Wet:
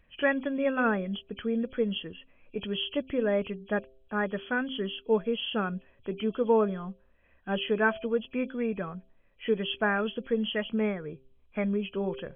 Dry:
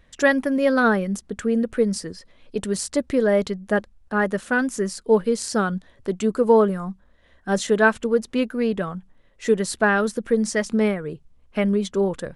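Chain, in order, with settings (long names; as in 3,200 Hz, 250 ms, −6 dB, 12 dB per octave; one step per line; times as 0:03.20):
hearing-aid frequency compression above 2,300 Hz 4 to 1
hum removal 131.6 Hz, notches 5
level −8 dB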